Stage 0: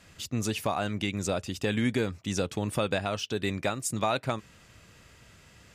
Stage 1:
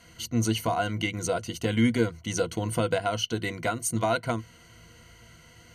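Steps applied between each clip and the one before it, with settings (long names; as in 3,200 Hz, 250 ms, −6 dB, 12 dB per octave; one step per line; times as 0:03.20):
EQ curve with evenly spaced ripples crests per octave 1.9, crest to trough 15 dB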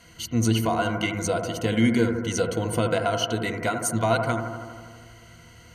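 bucket-brigade delay 80 ms, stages 1,024, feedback 73%, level −7 dB
level +2 dB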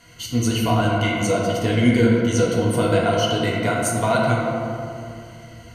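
convolution reverb RT60 2.1 s, pre-delay 7 ms, DRR −3 dB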